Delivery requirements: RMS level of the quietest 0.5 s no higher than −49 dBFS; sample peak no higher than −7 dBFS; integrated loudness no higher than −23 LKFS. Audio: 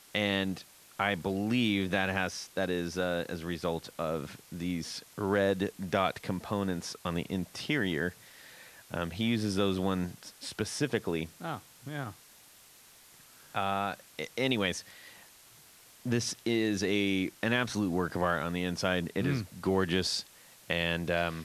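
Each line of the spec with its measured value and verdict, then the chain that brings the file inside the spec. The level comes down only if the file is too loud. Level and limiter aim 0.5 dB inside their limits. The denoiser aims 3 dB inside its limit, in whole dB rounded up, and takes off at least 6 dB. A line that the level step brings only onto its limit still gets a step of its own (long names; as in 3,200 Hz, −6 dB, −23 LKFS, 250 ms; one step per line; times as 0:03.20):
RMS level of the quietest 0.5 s −57 dBFS: in spec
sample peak −13.0 dBFS: in spec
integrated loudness −32.0 LKFS: in spec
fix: no processing needed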